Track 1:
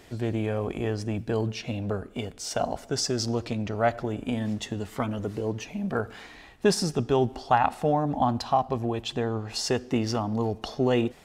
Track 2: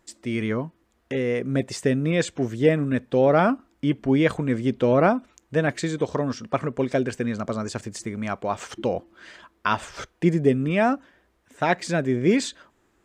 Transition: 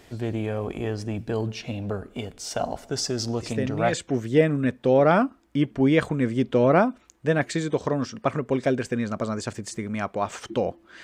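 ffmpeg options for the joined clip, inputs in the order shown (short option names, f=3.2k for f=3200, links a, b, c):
-filter_complex "[1:a]asplit=2[a][b];[0:a]apad=whole_dur=11.03,atrim=end=11.03,atrim=end=3.932[c];[b]atrim=start=2.208:end=9.31[d];[a]atrim=start=1.68:end=2.21,asetpts=PTS-STARTPTS,volume=-6.5dB,afade=t=in:d=0.004:c=hsin,afade=t=out:st=0.526:d=0.004:c=hsin,adelay=3400[e];[c][d]acrossfade=d=0.004:c1=hsin:c2=hsin[f];[f][e]amix=inputs=2:normalize=0"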